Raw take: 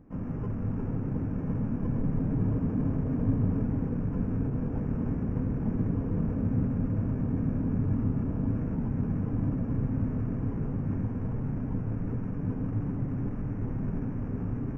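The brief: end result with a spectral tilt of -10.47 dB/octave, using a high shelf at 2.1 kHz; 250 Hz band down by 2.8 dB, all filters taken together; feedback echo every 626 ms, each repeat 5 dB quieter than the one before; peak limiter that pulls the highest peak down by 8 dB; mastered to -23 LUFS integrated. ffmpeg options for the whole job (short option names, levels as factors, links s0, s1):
-af "equalizer=f=250:t=o:g=-3.5,highshelf=f=2100:g=-6.5,alimiter=limit=0.0708:level=0:latency=1,aecho=1:1:626|1252|1878|2504|3130|3756|4382:0.562|0.315|0.176|0.0988|0.0553|0.031|0.0173,volume=2.66"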